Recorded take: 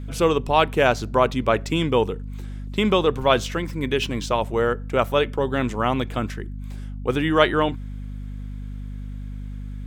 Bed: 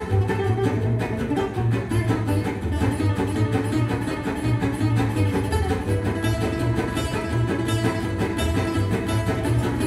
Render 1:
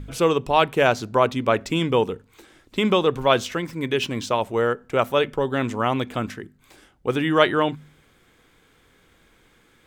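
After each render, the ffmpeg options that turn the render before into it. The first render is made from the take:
-af "bandreject=f=50:t=h:w=4,bandreject=f=100:t=h:w=4,bandreject=f=150:t=h:w=4,bandreject=f=200:t=h:w=4,bandreject=f=250:t=h:w=4"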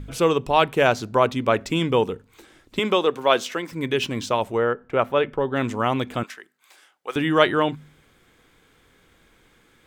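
-filter_complex "[0:a]asettb=1/sr,asplit=3[a][b][c];[a]atrim=end=2.794[d];[b]atrim=start=2.79:end=3.72,asetpts=PTS-STARTPTS,afade=t=in:d=0.004:c=qsin,afade=t=out:st=0.926:d=0.004:c=qsin,highpass=280[e];[c]atrim=start=3.716[f];[d][e]acrossfade=d=0.004:c1=hsin:c2=qsin[g];[g][f]acrossfade=d=0.004:c1=qsin:c2=hsin,asplit=3[h][i][j];[h]afade=t=out:st=4.56:d=0.02[k];[i]bass=f=250:g=-2,treble=f=4k:g=-15,afade=t=in:st=4.56:d=0.02,afade=t=out:st=5.55:d=0.02[l];[j]afade=t=in:st=5.55:d=0.02[m];[k][l][m]amix=inputs=3:normalize=0,asettb=1/sr,asplit=3[n][o][p];[n]atrim=end=6.234[q];[o]atrim=start=6.23:end=7.16,asetpts=PTS-STARTPTS,afade=t=in:d=0.004:c=qsin,afade=t=out:st=0.926:d=0.004:c=qsin,highpass=800[r];[p]atrim=start=7.156[s];[q][r]acrossfade=d=0.004:c1=hsin:c2=qsin[t];[t][s]acrossfade=d=0.004:c1=qsin:c2=hsin"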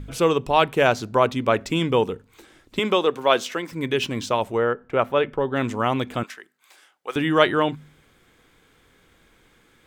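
-af anull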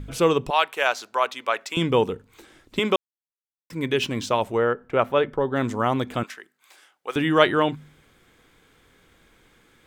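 -filter_complex "[0:a]asettb=1/sr,asplit=3[a][b][c];[a]atrim=end=0.504[d];[b]atrim=start=0.5:end=1.77,asetpts=PTS-STARTPTS,afade=t=in:d=0.004:c=qsin,afade=t=out:st=1.266:d=0.004:c=qsin,highpass=830[e];[c]atrim=start=1.766[f];[d][e]acrossfade=d=0.004:c1=hsin:c2=qsin[g];[g][f]acrossfade=d=0.004:c1=qsin:c2=hsin,asettb=1/sr,asplit=3[h][i][j];[h]atrim=end=5.204[k];[i]atrim=start=5.2:end=6.09,asetpts=PTS-STARTPTS,afade=t=in:d=0.004:c=qsin,afade=t=out:st=0.886:d=0.004:c=qsin,equalizer=f=2.6k:t=o:w=0.51:g=-7.5[l];[j]atrim=start=6.086[m];[k][l]acrossfade=d=0.004:c1=hsin:c2=qsin[n];[n][m]acrossfade=d=0.004:c1=qsin:c2=hsin,asplit=3[o][p][q];[o]atrim=end=2.96,asetpts=PTS-STARTPTS,afade=t=out:st=2.956:d=0.004:c=hsin[r];[p]atrim=start=2.96:end=3.7,asetpts=PTS-STARTPTS,volume=0[s];[q]atrim=start=3.7,asetpts=PTS-STARTPTS,afade=t=in:d=0.004:c=hsin[t];[r][s][t]concat=n=3:v=0:a=1"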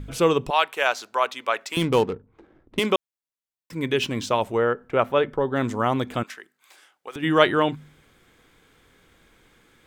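-filter_complex "[0:a]asettb=1/sr,asplit=3[a][b][c];[a]atrim=end=1.724[d];[b]atrim=start=1.72:end=2.86,asetpts=PTS-STARTPTS,afade=t=in:d=0.004:c=qsin,afade=t=out:st=1.136:d=0.004:c=qsin,adynamicsmooth=sensitivity=6:basefreq=740[e];[c]atrim=start=2.856[f];[d][e]acrossfade=d=0.004:c1=hsin:c2=qsin[g];[g][f]acrossfade=d=0.004:c1=qsin:c2=hsin,asplit=3[h][i][j];[h]afade=t=out:st=6.22:d=0.02[k];[i]acompressor=threshold=-31dB:ratio=6:attack=3.2:release=140:knee=1:detection=peak,afade=t=in:st=6.22:d=0.02,afade=t=out:st=7.22:d=0.02[l];[j]afade=t=in:st=7.22:d=0.02[m];[k][l][m]amix=inputs=3:normalize=0"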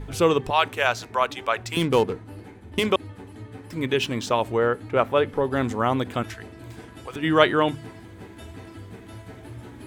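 -filter_complex "[1:a]volume=-18.5dB[a];[0:a][a]amix=inputs=2:normalize=0"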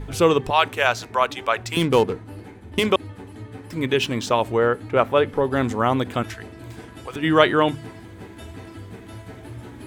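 -af "volume=2.5dB,alimiter=limit=-2dB:level=0:latency=1"

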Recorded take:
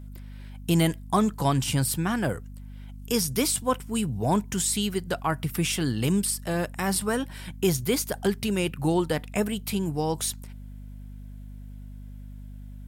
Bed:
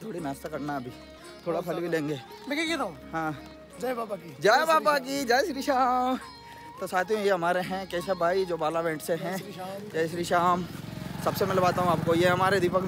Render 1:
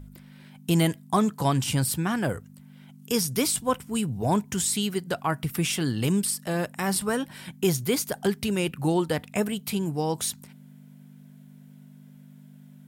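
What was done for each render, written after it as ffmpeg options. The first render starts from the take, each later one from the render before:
-af "bandreject=f=50:t=h:w=4,bandreject=f=100:t=h:w=4"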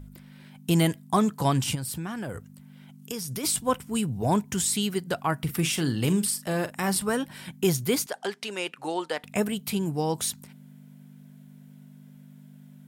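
-filter_complex "[0:a]asplit=3[a][b][c];[a]afade=t=out:st=1.74:d=0.02[d];[b]acompressor=threshold=-29dB:ratio=10:attack=3.2:release=140:knee=1:detection=peak,afade=t=in:st=1.74:d=0.02,afade=t=out:st=3.43:d=0.02[e];[c]afade=t=in:st=3.43:d=0.02[f];[d][e][f]amix=inputs=3:normalize=0,asettb=1/sr,asplit=3[g][h][i];[g]atrim=end=5.374[j];[h]atrim=start=5.37:end=6.89,asetpts=PTS-STARTPTS,afade=t=in:d=0.004:c=qsin,afade=t=out:st=1.516:d=0.004:c=qsin,asplit=2[k][l];[l]adelay=43,volume=-12dB[m];[k][m]amix=inputs=2:normalize=0,atrim=end_sample=67032[n];[i]atrim=start=6.886[o];[j][n]acrossfade=d=0.004:c1=hsin:c2=qsin[p];[p][o]acrossfade=d=0.004:c1=qsin:c2=hsin,asettb=1/sr,asplit=3[q][r][s];[q]atrim=end=8.064[t];[r]atrim=start=8.06:end=9.24,asetpts=PTS-STARTPTS,afade=t=in:d=0.004:c=qsin,afade=t=out:st=1.176:d=0.004:c=qsin,highpass=520,lowpass=7k[u];[s]atrim=start=9.236[v];[t][u]acrossfade=d=0.004:c1=hsin:c2=qsin[w];[w][v]acrossfade=d=0.004:c1=qsin:c2=hsin"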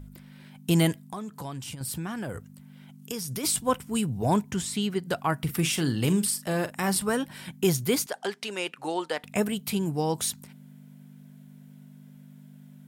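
-filter_complex "[0:a]asettb=1/sr,asplit=3[a][b][c];[a]atrim=end=1.004[d];[b]atrim=start=1:end=1.81,asetpts=PTS-STARTPTS,afade=t=in:d=0.004:c=qsin,afade=t=out:st=0.806:d=0.004:c=qsin,acompressor=threshold=-38dB:ratio=3:attack=3.2:release=140:knee=1:detection=peak[e];[c]atrim=start=1.806[f];[d][e]acrossfade=d=0.004:c1=hsin:c2=qsin[g];[g][f]acrossfade=d=0.004:c1=qsin:c2=hsin,asettb=1/sr,asplit=3[h][i][j];[h]atrim=end=4.514[k];[i]atrim=start=4.51:end=5.03,asetpts=PTS-STARTPTS,afade=t=in:d=0.004:c=qsin,afade=t=out:st=0.516:d=0.004:c=qsin,lowpass=f=3.1k:p=1[l];[j]atrim=start=5.026[m];[k][l]acrossfade=d=0.004:c1=hsin:c2=qsin[n];[n][m]acrossfade=d=0.004:c1=qsin:c2=hsin"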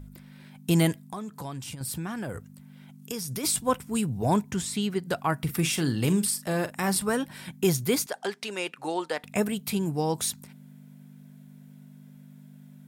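-af "bandreject=f=3k:w=20"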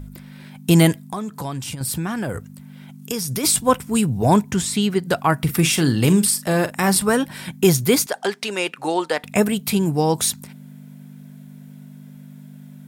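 -af "volume=8.5dB"

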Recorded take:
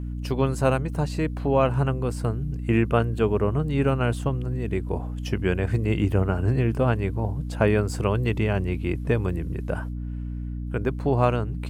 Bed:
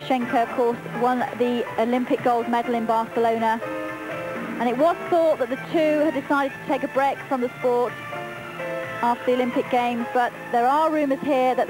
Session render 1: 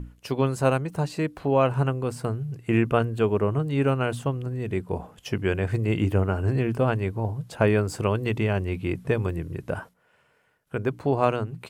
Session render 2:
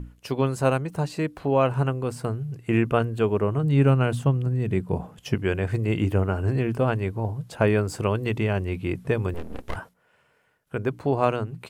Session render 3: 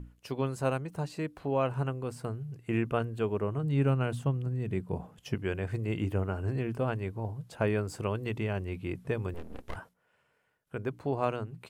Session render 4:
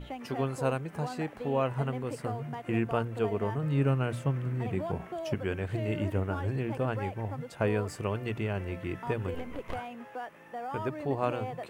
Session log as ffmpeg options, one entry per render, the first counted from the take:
-af "bandreject=f=60:t=h:w=6,bandreject=f=120:t=h:w=6,bandreject=f=180:t=h:w=6,bandreject=f=240:t=h:w=6,bandreject=f=300:t=h:w=6"
-filter_complex "[0:a]asettb=1/sr,asplit=3[a][b][c];[a]atrim=end=3.634[d];[b]atrim=start=3.63:end=5.35,asetpts=PTS-STARTPTS,afade=t=in:d=0.004:c=qsin,afade=t=out:st=1.716:d=0.004:c=qsin,equalizer=f=150:w=1.1:g=7.5[e];[c]atrim=start=5.346[f];[d][e]acrossfade=d=0.004:c1=hsin:c2=qsin[g];[g][f]acrossfade=d=0.004:c1=qsin:c2=hsin,asettb=1/sr,asplit=3[h][i][j];[h]atrim=end=9.344[k];[i]atrim=start=9.34:end=9.76,asetpts=PTS-STARTPTS,afade=t=in:d=0.004:c=qsin,afade=t=out:st=0.416:d=0.004:c=qsin,aeval=exprs='abs(val(0))':c=same[l];[j]atrim=start=9.756[m];[k][l]acrossfade=d=0.004:c1=hsin:c2=qsin[n];[n][m]acrossfade=d=0.004:c1=qsin:c2=hsin"
-af "volume=-8dB"
-filter_complex "[1:a]volume=-18.5dB[a];[0:a][a]amix=inputs=2:normalize=0"

